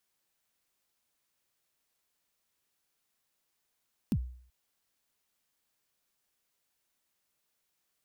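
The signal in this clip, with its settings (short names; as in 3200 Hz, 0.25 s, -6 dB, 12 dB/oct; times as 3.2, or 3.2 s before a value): kick drum length 0.38 s, from 270 Hz, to 62 Hz, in 62 ms, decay 0.55 s, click on, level -22.5 dB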